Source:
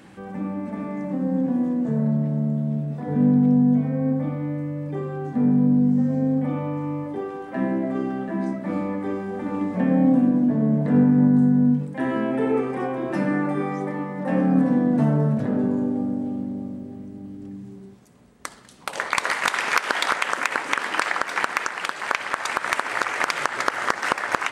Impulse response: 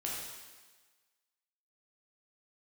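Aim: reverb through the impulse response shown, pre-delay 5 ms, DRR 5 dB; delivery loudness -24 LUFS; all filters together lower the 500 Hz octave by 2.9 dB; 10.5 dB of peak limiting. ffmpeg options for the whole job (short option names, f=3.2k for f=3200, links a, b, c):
-filter_complex "[0:a]equalizer=f=500:t=o:g=-3.5,alimiter=limit=-14.5dB:level=0:latency=1,asplit=2[a][b];[1:a]atrim=start_sample=2205,adelay=5[c];[b][c]afir=irnorm=-1:irlink=0,volume=-7.5dB[d];[a][d]amix=inputs=2:normalize=0"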